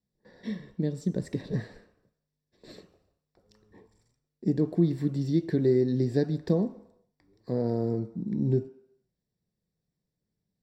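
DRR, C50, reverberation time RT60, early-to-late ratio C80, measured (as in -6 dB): 10.0 dB, 14.0 dB, 0.75 s, 16.5 dB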